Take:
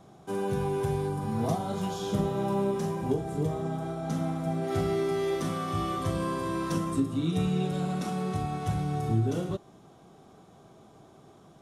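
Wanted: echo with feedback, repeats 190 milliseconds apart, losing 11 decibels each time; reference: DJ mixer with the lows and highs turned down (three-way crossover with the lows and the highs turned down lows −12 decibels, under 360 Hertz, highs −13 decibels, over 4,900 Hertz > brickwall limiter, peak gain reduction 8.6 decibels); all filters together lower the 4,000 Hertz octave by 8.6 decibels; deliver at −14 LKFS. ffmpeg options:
ffmpeg -i in.wav -filter_complex "[0:a]acrossover=split=360 4900:gain=0.251 1 0.224[link_01][link_02][link_03];[link_01][link_02][link_03]amix=inputs=3:normalize=0,equalizer=frequency=4000:width_type=o:gain=-9,aecho=1:1:190|380|570:0.282|0.0789|0.0221,volume=23dB,alimiter=limit=-5.5dB:level=0:latency=1" out.wav

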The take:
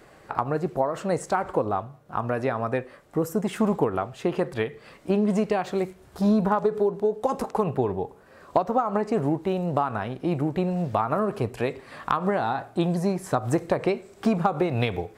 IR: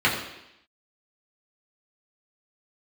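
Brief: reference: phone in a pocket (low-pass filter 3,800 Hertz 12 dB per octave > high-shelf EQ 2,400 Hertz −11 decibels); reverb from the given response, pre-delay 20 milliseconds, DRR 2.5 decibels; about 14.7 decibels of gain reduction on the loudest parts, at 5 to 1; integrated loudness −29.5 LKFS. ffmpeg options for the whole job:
-filter_complex "[0:a]acompressor=threshold=-35dB:ratio=5,asplit=2[link_01][link_02];[1:a]atrim=start_sample=2205,adelay=20[link_03];[link_02][link_03]afir=irnorm=-1:irlink=0,volume=-20dB[link_04];[link_01][link_04]amix=inputs=2:normalize=0,lowpass=3800,highshelf=frequency=2400:gain=-11,volume=8.5dB"

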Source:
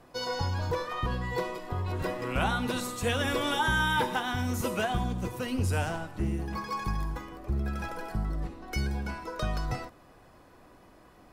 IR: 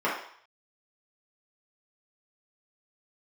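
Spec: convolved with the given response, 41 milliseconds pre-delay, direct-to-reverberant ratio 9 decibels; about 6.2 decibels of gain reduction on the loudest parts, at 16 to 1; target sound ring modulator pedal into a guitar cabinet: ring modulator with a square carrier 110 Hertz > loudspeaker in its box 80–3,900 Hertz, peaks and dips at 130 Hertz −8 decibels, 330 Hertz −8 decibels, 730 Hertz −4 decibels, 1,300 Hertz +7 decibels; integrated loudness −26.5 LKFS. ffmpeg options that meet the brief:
-filter_complex "[0:a]acompressor=threshold=-29dB:ratio=16,asplit=2[link_01][link_02];[1:a]atrim=start_sample=2205,adelay=41[link_03];[link_02][link_03]afir=irnorm=-1:irlink=0,volume=-23dB[link_04];[link_01][link_04]amix=inputs=2:normalize=0,aeval=exprs='val(0)*sgn(sin(2*PI*110*n/s))':channel_layout=same,highpass=80,equalizer=frequency=130:width_type=q:width=4:gain=-8,equalizer=frequency=330:width_type=q:width=4:gain=-8,equalizer=frequency=730:width_type=q:width=4:gain=-4,equalizer=frequency=1300:width_type=q:width=4:gain=7,lowpass=frequency=3900:width=0.5412,lowpass=frequency=3900:width=1.3066,volume=8.5dB"

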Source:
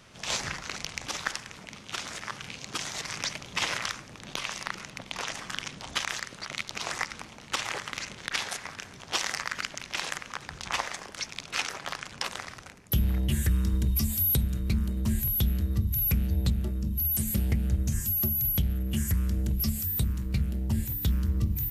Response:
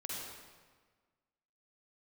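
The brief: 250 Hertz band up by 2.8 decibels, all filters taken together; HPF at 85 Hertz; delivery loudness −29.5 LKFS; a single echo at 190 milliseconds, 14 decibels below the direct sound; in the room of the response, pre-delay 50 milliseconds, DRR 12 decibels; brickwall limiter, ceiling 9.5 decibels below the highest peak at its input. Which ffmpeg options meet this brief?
-filter_complex "[0:a]highpass=85,equalizer=frequency=250:width_type=o:gain=4,alimiter=limit=-22.5dB:level=0:latency=1,aecho=1:1:190:0.2,asplit=2[link_01][link_02];[1:a]atrim=start_sample=2205,adelay=50[link_03];[link_02][link_03]afir=irnorm=-1:irlink=0,volume=-12.5dB[link_04];[link_01][link_04]amix=inputs=2:normalize=0,volume=3dB"

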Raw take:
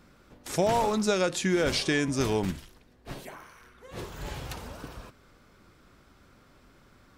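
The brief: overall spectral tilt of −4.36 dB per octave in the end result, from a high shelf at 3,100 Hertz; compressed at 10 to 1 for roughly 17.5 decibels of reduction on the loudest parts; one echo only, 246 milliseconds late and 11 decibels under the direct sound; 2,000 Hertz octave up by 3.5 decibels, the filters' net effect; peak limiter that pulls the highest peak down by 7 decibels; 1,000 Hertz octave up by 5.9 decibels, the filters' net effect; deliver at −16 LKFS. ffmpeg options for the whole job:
ffmpeg -i in.wav -af "equalizer=frequency=1000:width_type=o:gain=7,equalizer=frequency=2000:width_type=o:gain=3,highshelf=frequency=3100:gain=-3,acompressor=threshold=-36dB:ratio=10,alimiter=level_in=8.5dB:limit=-24dB:level=0:latency=1,volume=-8.5dB,aecho=1:1:246:0.282,volume=27dB" out.wav

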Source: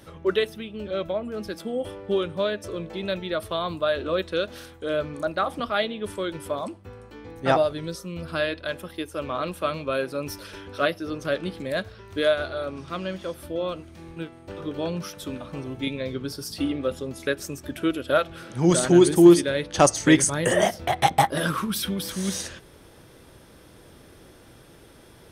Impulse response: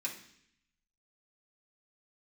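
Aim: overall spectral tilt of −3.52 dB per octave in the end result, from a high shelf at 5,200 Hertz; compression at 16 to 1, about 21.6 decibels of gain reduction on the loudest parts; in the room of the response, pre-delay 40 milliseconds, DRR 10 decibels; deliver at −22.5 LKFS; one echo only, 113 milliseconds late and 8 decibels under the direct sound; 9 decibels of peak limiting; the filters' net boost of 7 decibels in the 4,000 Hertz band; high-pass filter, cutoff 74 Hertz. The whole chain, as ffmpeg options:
-filter_complex "[0:a]highpass=74,equalizer=frequency=4000:width_type=o:gain=5.5,highshelf=frequency=5200:gain=8,acompressor=threshold=-29dB:ratio=16,alimiter=limit=-23.5dB:level=0:latency=1,aecho=1:1:113:0.398,asplit=2[link_01][link_02];[1:a]atrim=start_sample=2205,adelay=40[link_03];[link_02][link_03]afir=irnorm=-1:irlink=0,volume=-11.5dB[link_04];[link_01][link_04]amix=inputs=2:normalize=0,volume=12dB"

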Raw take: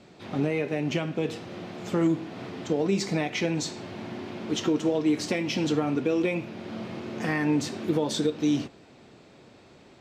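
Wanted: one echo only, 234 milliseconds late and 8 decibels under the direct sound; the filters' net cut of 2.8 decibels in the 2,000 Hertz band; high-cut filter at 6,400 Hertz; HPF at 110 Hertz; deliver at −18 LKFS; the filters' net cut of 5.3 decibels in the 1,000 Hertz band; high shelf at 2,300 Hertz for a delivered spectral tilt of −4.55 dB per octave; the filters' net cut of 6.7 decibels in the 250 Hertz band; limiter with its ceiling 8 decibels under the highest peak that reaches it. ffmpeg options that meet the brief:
ffmpeg -i in.wav -af "highpass=110,lowpass=6400,equalizer=frequency=250:width_type=o:gain=-9,equalizer=frequency=1000:width_type=o:gain=-6.5,equalizer=frequency=2000:width_type=o:gain=-3.5,highshelf=frequency=2300:gain=3,alimiter=level_in=2dB:limit=-24dB:level=0:latency=1,volume=-2dB,aecho=1:1:234:0.398,volume=18dB" out.wav

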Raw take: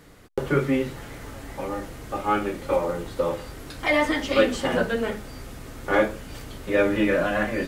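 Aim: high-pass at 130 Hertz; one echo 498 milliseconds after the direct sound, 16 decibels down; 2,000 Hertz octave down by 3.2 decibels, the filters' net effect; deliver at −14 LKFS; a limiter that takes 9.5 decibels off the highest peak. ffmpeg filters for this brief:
ffmpeg -i in.wav -af "highpass=130,equalizer=frequency=2000:width_type=o:gain=-4,alimiter=limit=-16.5dB:level=0:latency=1,aecho=1:1:498:0.158,volume=14.5dB" out.wav

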